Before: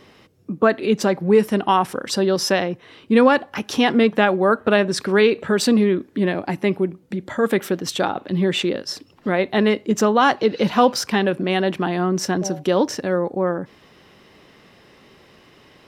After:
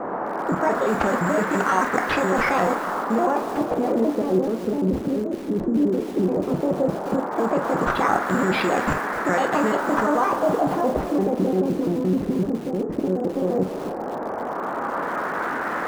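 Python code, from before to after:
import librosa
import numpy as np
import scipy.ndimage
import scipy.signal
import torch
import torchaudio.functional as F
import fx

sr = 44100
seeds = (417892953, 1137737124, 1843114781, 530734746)

y = fx.pitch_trill(x, sr, semitones=6.0, every_ms=86)
y = (np.kron(y[::6], np.eye(6)[0]) * 6)[:len(y)]
y = fx.level_steps(y, sr, step_db=23)
y = fx.dmg_noise_band(y, sr, seeds[0], low_hz=200.0, high_hz=1700.0, level_db=-37.0)
y = fx.room_early_taps(y, sr, ms=(27, 48), db=(-11.0, -10.5))
y = fx.filter_lfo_lowpass(y, sr, shape='sine', hz=0.14, low_hz=310.0, high_hz=1800.0, q=1.3)
y = fx.echo_crushed(y, sr, ms=258, feedback_pct=35, bits=6, wet_db=-14.0)
y = y * 10.0 ** (8.5 / 20.0)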